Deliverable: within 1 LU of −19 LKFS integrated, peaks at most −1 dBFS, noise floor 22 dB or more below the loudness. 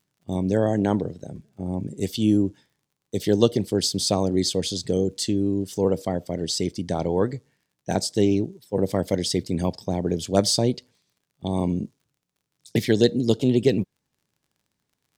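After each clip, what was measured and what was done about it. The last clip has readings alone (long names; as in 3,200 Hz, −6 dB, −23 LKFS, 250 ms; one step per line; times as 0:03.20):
crackle rate 37 per second; integrated loudness −24.0 LKFS; sample peak −2.0 dBFS; target loudness −19.0 LKFS
→ click removal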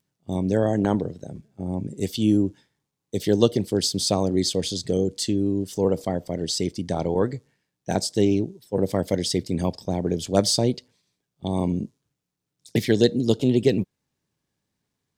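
crackle rate 0.20 per second; integrated loudness −24.0 LKFS; sample peak −2.0 dBFS; target loudness −19.0 LKFS
→ level +5 dB
brickwall limiter −1 dBFS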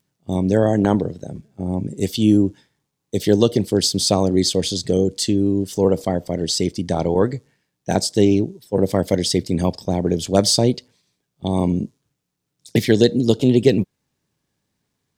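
integrated loudness −19.0 LKFS; sample peak −1.0 dBFS; background noise floor −77 dBFS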